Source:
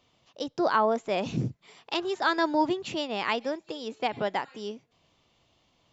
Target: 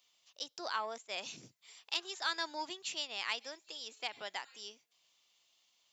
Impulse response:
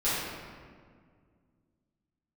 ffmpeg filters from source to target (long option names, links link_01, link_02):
-filter_complex "[0:a]acontrast=47,aderivative,asettb=1/sr,asplit=3[link_01][link_02][link_03];[link_01]atrim=end=0.984[link_04];[link_02]atrim=start=0.98:end=1.43,asetpts=PTS-STARTPTS,afade=type=in:duration=0.004:curve=qsin,afade=type=out:start_time=0.446:duration=0.004:curve=qsin,agate=range=-33dB:threshold=-44dB:ratio=3:detection=peak[link_05];[link_03]atrim=start=1.426[link_06];[link_04][link_05]acrossfade=duration=0.004:curve1=hsin:curve2=qsin[link_07];[link_07][link_06]acrossfade=duration=0.004:curve1=qsin:curve2=hsin,volume=-2dB"